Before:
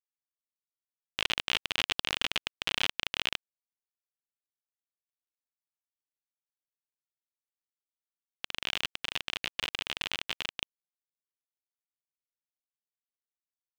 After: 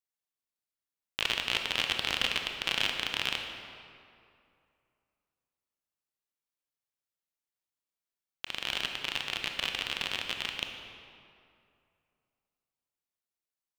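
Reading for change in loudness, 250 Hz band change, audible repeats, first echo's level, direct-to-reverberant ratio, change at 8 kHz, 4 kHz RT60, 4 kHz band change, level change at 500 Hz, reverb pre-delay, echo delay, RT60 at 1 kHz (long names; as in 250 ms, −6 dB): +1.0 dB, +1.5 dB, no echo audible, no echo audible, 3.5 dB, +1.0 dB, 1.6 s, +1.0 dB, +2.0 dB, 22 ms, no echo audible, 2.5 s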